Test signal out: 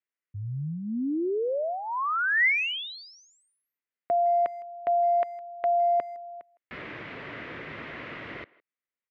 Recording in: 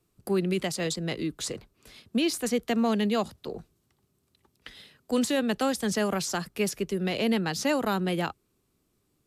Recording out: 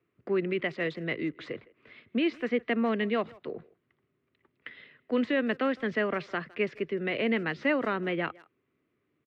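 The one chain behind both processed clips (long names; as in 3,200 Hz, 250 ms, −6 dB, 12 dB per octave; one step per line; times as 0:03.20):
loudspeaker in its box 150–2,700 Hz, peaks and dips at 190 Hz −7 dB, 820 Hz −9 dB, 2,000 Hz +7 dB
far-end echo of a speakerphone 160 ms, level −22 dB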